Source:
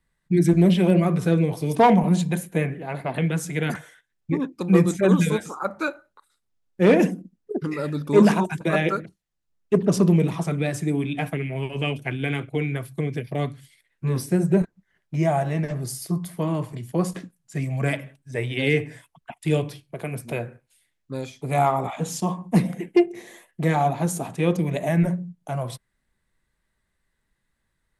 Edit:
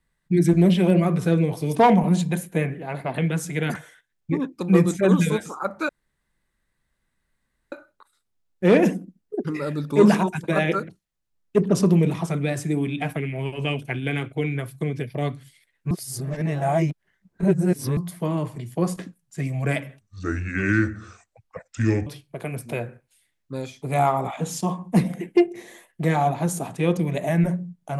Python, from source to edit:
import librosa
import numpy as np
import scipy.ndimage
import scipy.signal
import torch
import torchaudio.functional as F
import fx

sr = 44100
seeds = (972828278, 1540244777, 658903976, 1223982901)

y = fx.edit(x, sr, fx.insert_room_tone(at_s=5.89, length_s=1.83),
    fx.reverse_span(start_s=14.08, length_s=2.06),
    fx.speed_span(start_s=18.18, length_s=1.48, speed=0.72), tone=tone)